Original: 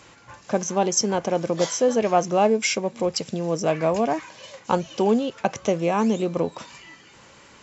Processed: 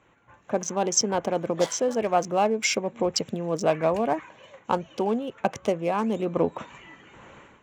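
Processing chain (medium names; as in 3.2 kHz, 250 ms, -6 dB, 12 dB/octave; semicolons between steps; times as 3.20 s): local Wiener filter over 9 samples; harmonic-percussive split harmonic -5 dB; level rider gain up to 15.5 dB; trim -8 dB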